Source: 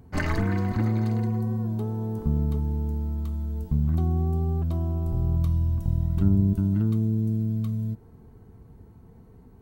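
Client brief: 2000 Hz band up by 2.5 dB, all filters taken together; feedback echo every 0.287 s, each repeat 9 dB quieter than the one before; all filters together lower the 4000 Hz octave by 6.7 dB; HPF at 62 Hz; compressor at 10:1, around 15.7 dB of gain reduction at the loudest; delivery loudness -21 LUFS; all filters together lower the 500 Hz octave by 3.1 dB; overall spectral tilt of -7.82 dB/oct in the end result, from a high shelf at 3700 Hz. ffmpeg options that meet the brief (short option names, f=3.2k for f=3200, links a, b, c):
-af "highpass=62,equalizer=f=500:t=o:g=-4.5,equalizer=f=2k:t=o:g=6,highshelf=f=3.7k:g=-4.5,equalizer=f=4k:t=o:g=-8.5,acompressor=threshold=-33dB:ratio=10,aecho=1:1:287|574|861|1148:0.355|0.124|0.0435|0.0152,volume=16.5dB"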